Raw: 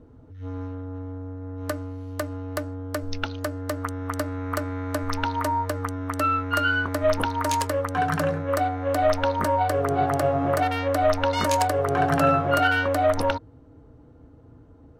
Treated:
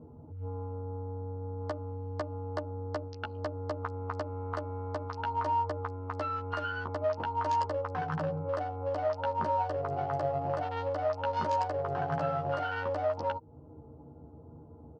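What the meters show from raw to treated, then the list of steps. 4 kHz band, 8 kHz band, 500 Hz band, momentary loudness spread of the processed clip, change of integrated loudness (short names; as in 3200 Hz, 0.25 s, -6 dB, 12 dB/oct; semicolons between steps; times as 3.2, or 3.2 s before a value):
-15.0 dB, under -20 dB, -8.0 dB, 11 LU, -9.0 dB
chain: Wiener smoothing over 25 samples; low shelf 230 Hz +4 dB; compressor 4:1, threshold -33 dBFS, peak gain reduction 15 dB; speaker cabinet 120–5200 Hz, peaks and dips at 280 Hz -6 dB, 870 Hz +7 dB, 2300 Hz -6 dB, 3700 Hz -7 dB; doubler 13 ms -3.5 dB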